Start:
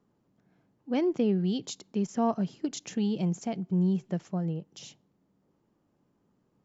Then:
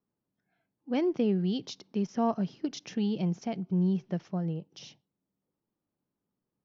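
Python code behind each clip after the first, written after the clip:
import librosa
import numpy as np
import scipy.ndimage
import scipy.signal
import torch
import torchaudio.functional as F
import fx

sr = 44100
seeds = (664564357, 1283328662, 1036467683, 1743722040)

y = fx.noise_reduce_blind(x, sr, reduce_db=14)
y = scipy.signal.sosfilt(scipy.signal.ellip(4, 1.0, 40, 5800.0, 'lowpass', fs=sr, output='sos'), y)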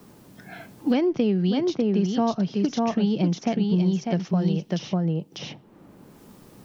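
y = x + 10.0 ** (-5.0 / 20.0) * np.pad(x, (int(597 * sr / 1000.0), 0))[:len(x)]
y = fx.band_squash(y, sr, depth_pct=100)
y = y * librosa.db_to_amplitude(6.0)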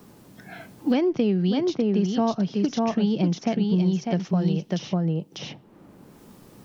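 y = fx.wow_flutter(x, sr, seeds[0], rate_hz=2.1, depth_cents=23.0)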